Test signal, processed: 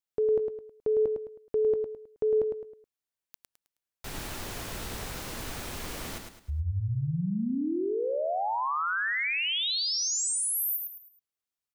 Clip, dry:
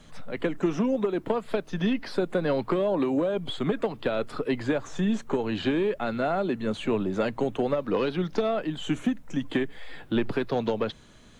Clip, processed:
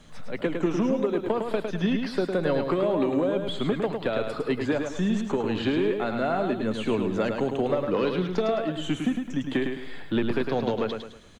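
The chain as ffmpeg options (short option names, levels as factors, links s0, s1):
-af "aecho=1:1:106|212|318|424:0.531|0.191|0.0688|0.0248"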